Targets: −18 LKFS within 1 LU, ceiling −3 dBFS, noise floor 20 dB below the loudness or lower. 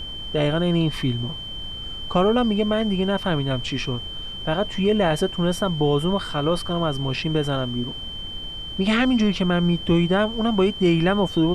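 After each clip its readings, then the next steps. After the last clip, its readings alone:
interfering tone 3,100 Hz; level of the tone −32 dBFS; background noise floor −34 dBFS; target noise floor −43 dBFS; integrated loudness −22.5 LKFS; sample peak −7.5 dBFS; target loudness −18.0 LKFS
→ notch filter 3,100 Hz, Q 30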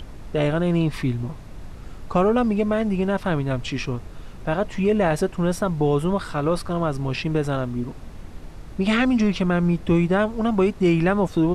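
interfering tone none found; background noise floor −39 dBFS; target noise floor −43 dBFS
→ noise reduction from a noise print 6 dB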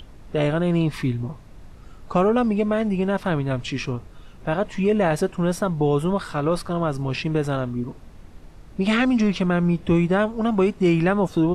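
background noise floor −44 dBFS; integrated loudness −22.5 LKFS; sample peak −8.0 dBFS; target loudness −18.0 LKFS
→ level +4.5 dB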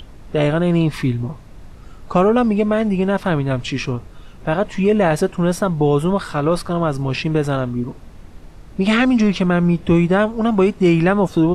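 integrated loudness −18.0 LKFS; sample peak −3.5 dBFS; background noise floor −40 dBFS

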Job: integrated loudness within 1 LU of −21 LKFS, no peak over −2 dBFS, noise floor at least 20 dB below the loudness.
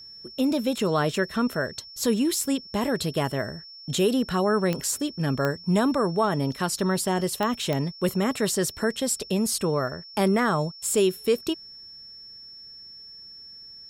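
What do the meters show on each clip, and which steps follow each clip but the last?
number of clicks 4; interfering tone 5,400 Hz; level of the tone −42 dBFS; integrated loudness −25.5 LKFS; sample peak −8.0 dBFS; target loudness −21.0 LKFS
→ click removal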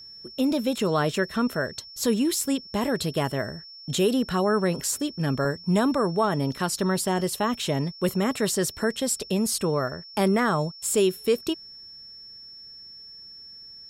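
number of clicks 0; interfering tone 5,400 Hz; level of the tone −42 dBFS
→ notch filter 5,400 Hz, Q 30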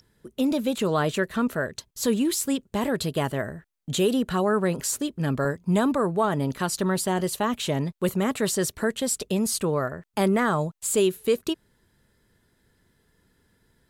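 interfering tone none found; integrated loudness −25.5 LKFS; sample peak −11.5 dBFS; target loudness −21.0 LKFS
→ level +4.5 dB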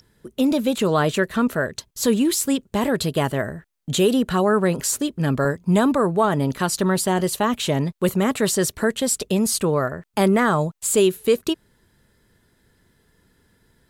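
integrated loudness −21.0 LKFS; sample peak −7.0 dBFS; background noise floor −64 dBFS

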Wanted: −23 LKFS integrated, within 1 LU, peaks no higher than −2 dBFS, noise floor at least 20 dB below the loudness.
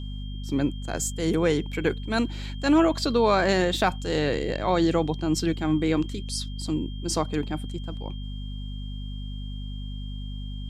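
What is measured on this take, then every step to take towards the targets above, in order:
mains hum 50 Hz; hum harmonics up to 250 Hz; level of the hum −31 dBFS; interfering tone 3,200 Hz; level of the tone −46 dBFS; integrated loudness −25.5 LKFS; sample peak −9.0 dBFS; target loudness −23.0 LKFS
→ hum removal 50 Hz, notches 5
notch filter 3,200 Hz, Q 30
level +2.5 dB

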